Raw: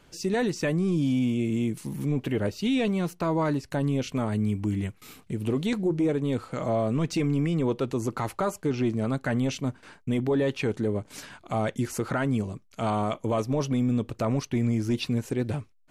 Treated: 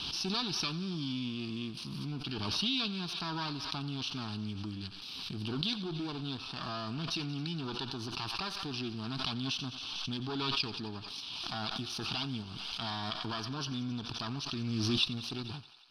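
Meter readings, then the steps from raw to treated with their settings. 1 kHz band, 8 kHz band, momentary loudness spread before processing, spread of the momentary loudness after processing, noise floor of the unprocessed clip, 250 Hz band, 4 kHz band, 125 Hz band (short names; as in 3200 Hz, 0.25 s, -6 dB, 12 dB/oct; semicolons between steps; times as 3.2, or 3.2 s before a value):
-7.5 dB, -5.0 dB, 6 LU, 8 LU, -58 dBFS, -11.5 dB, +8.0 dB, -11.0 dB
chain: minimum comb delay 0.32 ms; tilt +2.5 dB/oct; fixed phaser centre 2000 Hz, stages 6; in parallel at -7 dB: backlash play -38.5 dBFS; on the sum: synth low-pass 4800 Hz, resonance Q 6.4; on a send: thinning echo 89 ms, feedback 79%, high-pass 560 Hz, level -16.5 dB; on the sum: backwards sustainer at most 21 dB/s; gain -8 dB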